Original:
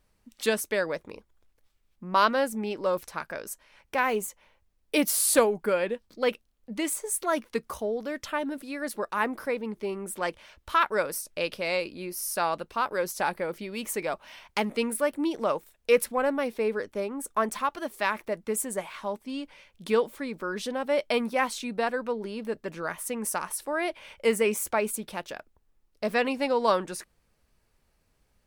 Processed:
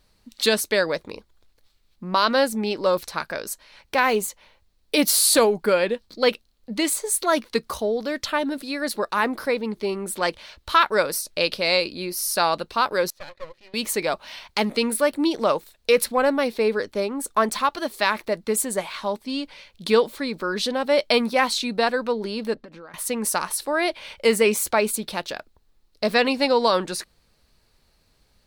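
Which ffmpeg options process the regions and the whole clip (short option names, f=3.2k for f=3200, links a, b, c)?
-filter_complex "[0:a]asettb=1/sr,asplit=3[a][b][c];[a]atrim=end=13.104[d];[b]atrim=start=13.1:end=13.74,asetpts=PTS-STARTPTS,afade=t=in:d=0.004:c=qsin,afade=t=out:st=0.636:d=0.004:c=qsin,asplit=3[e][f][g];[e]bandpass=f=530:t=q:w=8,volume=0dB[h];[f]bandpass=f=1.84k:t=q:w=8,volume=-6dB[i];[g]bandpass=f=2.48k:t=q:w=8,volume=-9dB[j];[h][i][j]amix=inputs=3:normalize=0,equalizer=f=460:t=o:w=0.26:g=-13.5,aeval=exprs='max(val(0),0)':c=same[k];[c]atrim=start=13.736[l];[d][k]acrossfade=d=0.004:c1=hsin:c2=qsin[m];[m][l]acrossfade=d=0.004:c1=qsin:c2=hsin,asettb=1/sr,asplit=3[n][o][p];[n]atrim=end=22.544[q];[o]atrim=start=22.54:end=22.94,asetpts=PTS-STARTPTS,afade=t=in:d=0.004:c=qsin,afade=t=out:st=0.396:d=0.004:c=qsin,lowpass=f=1.6k:p=1,acompressor=threshold=-44dB:ratio=16:attack=3.2:release=140:knee=1:detection=peak,aecho=1:1:3.8:0.35,atrim=end_sample=17640[r];[p]atrim=start=22.936[s];[q][r]acrossfade=d=0.004:c1=hsin:c2=qsin[t];[t][s]acrossfade=d=0.004:c1=qsin:c2=hsin,equalizer=f=4.2k:t=o:w=0.52:g=10.5,alimiter=level_in=12.5dB:limit=-1dB:release=50:level=0:latency=1,volume=-6.5dB"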